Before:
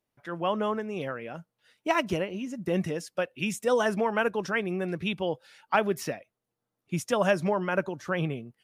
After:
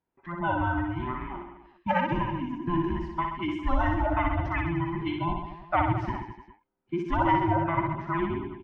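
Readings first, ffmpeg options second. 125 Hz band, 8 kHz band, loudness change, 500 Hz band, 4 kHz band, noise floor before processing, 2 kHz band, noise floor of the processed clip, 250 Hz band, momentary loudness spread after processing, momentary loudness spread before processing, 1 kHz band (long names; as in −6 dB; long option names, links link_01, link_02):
+5.5 dB, below −25 dB, +0.5 dB, −6.0 dB, −6.0 dB, −85 dBFS, −1.5 dB, −70 dBFS, +2.5 dB, 11 LU, 11 LU, +5.0 dB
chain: -filter_complex "[0:a]afftfilt=real='real(if(between(b,1,1008),(2*floor((b-1)/24)+1)*24-b,b),0)':imag='imag(if(between(b,1,1008),(2*floor((b-1)/24)+1)*24-b,b),0)*if(between(b,1,1008),-1,1)':win_size=2048:overlap=0.75,lowpass=2500,aemphasis=mode=reproduction:type=75kf,bandreject=frequency=430:width=12,asplit=2[link_01][link_02];[link_02]aecho=0:1:60|129|208.4|299.6|404.5:0.631|0.398|0.251|0.158|0.1[link_03];[link_01][link_03]amix=inputs=2:normalize=0"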